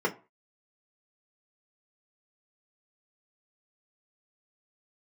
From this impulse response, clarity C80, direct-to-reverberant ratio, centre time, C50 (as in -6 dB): 23.0 dB, -1.5 dB, 10 ms, 17.5 dB